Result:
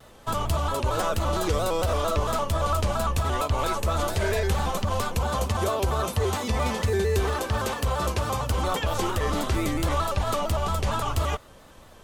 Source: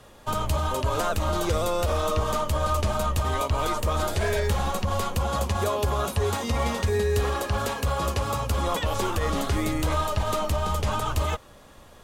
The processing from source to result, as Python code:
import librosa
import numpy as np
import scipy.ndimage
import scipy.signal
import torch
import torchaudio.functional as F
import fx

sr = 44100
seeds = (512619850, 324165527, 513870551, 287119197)

y = fx.vibrato_shape(x, sr, shape='square', rate_hz=4.4, depth_cents=100.0)